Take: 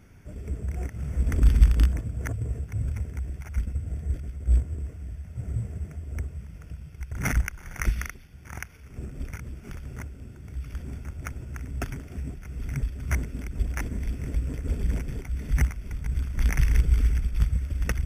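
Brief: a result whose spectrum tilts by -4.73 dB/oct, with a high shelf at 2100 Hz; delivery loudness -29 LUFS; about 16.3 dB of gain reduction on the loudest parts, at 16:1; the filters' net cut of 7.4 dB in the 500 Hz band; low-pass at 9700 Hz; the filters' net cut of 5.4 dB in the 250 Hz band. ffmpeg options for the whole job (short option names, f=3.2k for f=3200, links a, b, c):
-af "lowpass=9.7k,equalizer=f=250:t=o:g=-6.5,equalizer=f=500:t=o:g=-8,highshelf=f=2.1k:g=6,acompressor=threshold=-27dB:ratio=16,volume=7.5dB"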